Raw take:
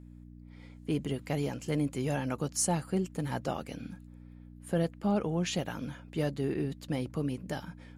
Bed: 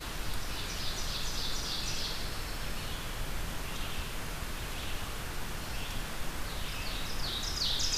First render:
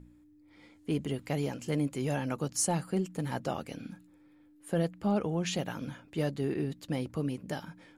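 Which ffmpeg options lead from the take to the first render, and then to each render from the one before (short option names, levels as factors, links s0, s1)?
-af "bandreject=f=60:t=h:w=4,bandreject=f=120:t=h:w=4,bandreject=f=180:t=h:w=4,bandreject=f=240:t=h:w=4"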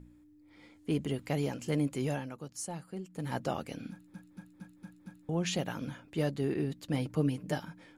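-filter_complex "[0:a]asettb=1/sr,asplit=3[s0][s1][s2];[s0]atrim=end=6.934[s3];[s1]atrim=start=6.93:end=7.58,asetpts=PTS-STARTPTS,afade=t=in:d=0.004:c=qsin,afade=t=out:st=0.646:d=0.004:c=qsin,aecho=1:1:6.6:0.64,atrim=end_sample=28665[s4];[s2]atrim=start=7.576[s5];[s3][s4]acrossfade=d=0.004:c1=hsin:c2=qsin[s6];[s6][s5]acrossfade=d=0.004:c1=qsin:c2=hsin,asplit=9[s7][s8][s9][s10][s11][s12][s13][s14][s15];[s7]atrim=end=2.31,asetpts=PTS-STARTPTS,afade=t=out:st=2.04:d=0.27:silence=0.298538[s16];[s8]atrim=start=2.31:end=3.08,asetpts=PTS-STARTPTS,volume=0.299[s17];[s9]atrim=start=3.08:end=4.142,asetpts=PTS-STARTPTS,afade=t=in:d=0.27:silence=0.298538[s18];[s10]atrim=start=3.908:end=4.142[s19];[s11]atrim=start=3.908:end=4.142[s20];[s12]atrim=start=3.908:end=4.142[s21];[s13]atrim=start=3.908:end=4.142[s22];[s14]atrim=start=3.908:end=4.142[s23];[s15]atrim=start=5.288[s24];[s16][s17][s18]concat=n=3:v=0:a=1[s25];[s25][s19]acrossfade=d=0.004:c1=hsin:c2=hsin[s26];[s26][s20]acrossfade=d=0.004:c1=hsin:c2=hsin[s27];[s27][s21]acrossfade=d=0.004:c1=hsin:c2=hsin[s28];[s28][s22]acrossfade=d=0.004:c1=hsin:c2=hsin[s29];[s29][s23]acrossfade=d=0.004:c1=hsin:c2=hsin[s30];[s30][s24]acrossfade=d=0.004:c1=hsin:c2=hsin"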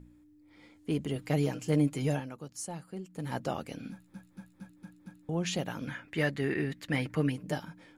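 -filter_complex "[0:a]asettb=1/sr,asplit=3[s0][s1][s2];[s0]atrim=end=1.154[s3];[s1]atrim=start=1.15:end=2.2,asetpts=PTS-STARTPTS,afade=t=in:d=0.004:c=qsin,afade=t=out:st=1.046:d=0.004:c=qsin,aecho=1:1:6.5:0.7,atrim=end_sample=46305[s4];[s2]atrim=start=2.196[s5];[s3][s4]acrossfade=d=0.004:c1=hsin:c2=qsin[s6];[s6][s5]acrossfade=d=0.004:c1=qsin:c2=hsin,asettb=1/sr,asplit=3[s7][s8][s9];[s7]atrim=end=3.824[s10];[s8]atrim=start=3.82:end=4.7,asetpts=PTS-STARTPTS,afade=t=in:d=0.004:c=qsin,afade=t=out:st=0.876:d=0.004:c=qsin,asplit=2[s11][s12];[s12]adelay=15,volume=0.562[s13];[s11][s13]amix=inputs=2:normalize=0,atrim=end_sample=38808[s14];[s9]atrim=start=4.696[s15];[s10][s14]acrossfade=d=0.004:c1=hsin:c2=qsin[s16];[s16][s15]acrossfade=d=0.004:c1=qsin:c2=hsin,asettb=1/sr,asplit=3[s17][s18][s19];[s17]atrim=end=5.874[s20];[s18]atrim=start=5.87:end=7.32,asetpts=PTS-STARTPTS,afade=t=in:d=0.004:c=qsin,afade=t=out:st=1.446:d=0.004:c=qsin,equalizer=f=1900:t=o:w=0.97:g=14[s21];[s19]atrim=start=7.316[s22];[s20][s21]acrossfade=d=0.004:c1=hsin:c2=qsin[s23];[s23][s22]acrossfade=d=0.004:c1=qsin:c2=hsin"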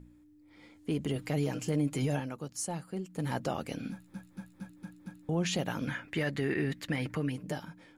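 -af "alimiter=level_in=1.19:limit=0.0631:level=0:latency=1:release=88,volume=0.841,dynaudnorm=f=100:g=17:m=1.5"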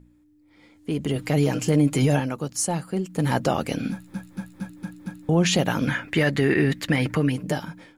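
-af "dynaudnorm=f=710:g=3:m=3.55"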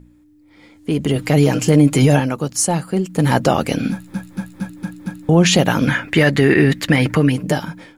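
-af "volume=2.37"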